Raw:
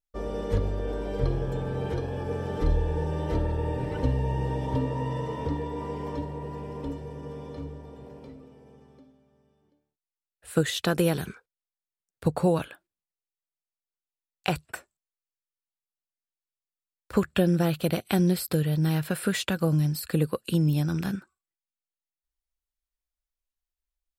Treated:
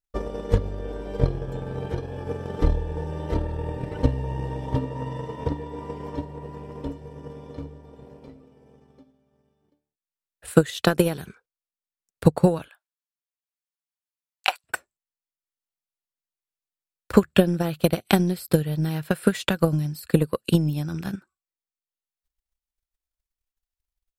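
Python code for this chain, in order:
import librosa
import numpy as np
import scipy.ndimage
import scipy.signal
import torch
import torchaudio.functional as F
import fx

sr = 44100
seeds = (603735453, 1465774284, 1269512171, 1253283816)

y = fx.highpass(x, sr, hz=740.0, slope=24, at=(12.69, 14.64))
y = fx.transient(y, sr, attack_db=11, sustain_db=-4)
y = F.gain(torch.from_numpy(y), -2.0).numpy()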